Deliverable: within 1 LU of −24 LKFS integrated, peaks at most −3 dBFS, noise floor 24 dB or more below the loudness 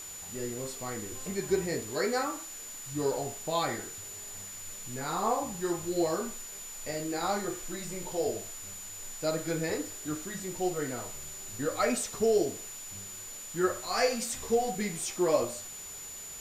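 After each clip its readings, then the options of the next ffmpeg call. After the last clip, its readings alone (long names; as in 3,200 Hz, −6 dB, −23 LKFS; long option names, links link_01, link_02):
interfering tone 7,000 Hz; level of the tone −42 dBFS; background noise floor −43 dBFS; target noise floor −57 dBFS; integrated loudness −33.0 LKFS; sample peak −12.5 dBFS; target loudness −24.0 LKFS
→ -af "bandreject=frequency=7000:width=30"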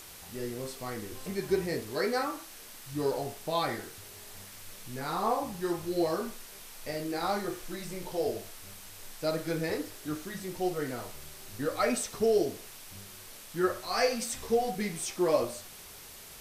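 interfering tone none found; background noise floor −48 dBFS; target noise floor −57 dBFS
→ -af "afftdn=noise_reduction=9:noise_floor=-48"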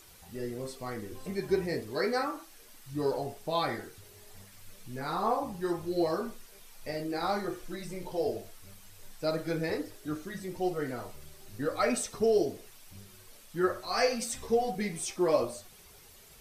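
background noise floor −55 dBFS; target noise floor −57 dBFS
→ -af "afftdn=noise_reduction=6:noise_floor=-55"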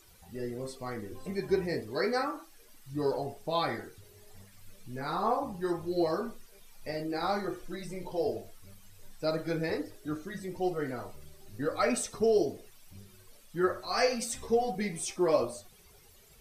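background noise floor −58 dBFS; integrated loudness −32.5 LKFS; sample peak −13.0 dBFS; target loudness −24.0 LKFS
→ -af "volume=8.5dB"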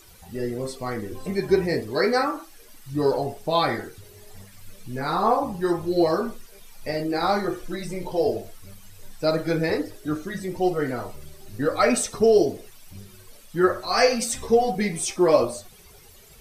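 integrated loudness −24.0 LKFS; sample peak −4.5 dBFS; background noise floor −49 dBFS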